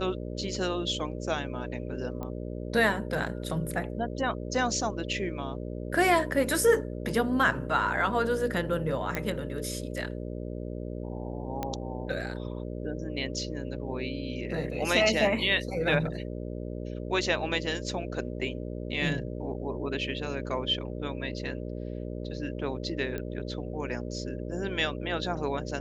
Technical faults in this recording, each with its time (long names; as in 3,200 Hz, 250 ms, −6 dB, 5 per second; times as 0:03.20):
mains buzz 60 Hz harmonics 10 −36 dBFS
0:02.23: click −24 dBFS
0:09.15: click −15 dBFS
0:11.63: click −17 dBFS
0:23.18: click −21 dBFS